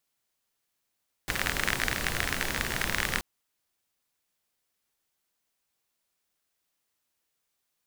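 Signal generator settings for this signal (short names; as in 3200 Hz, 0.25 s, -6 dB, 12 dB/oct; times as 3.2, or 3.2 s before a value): rain from filtered ticks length 1.93 s, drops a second 38, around 1800 Hz, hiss -0.5 dB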